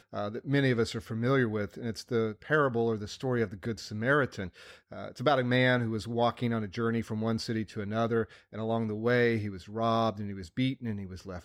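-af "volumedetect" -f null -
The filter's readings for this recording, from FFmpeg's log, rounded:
mean_volume: -30.2 dB
max_volume: -13.7 dB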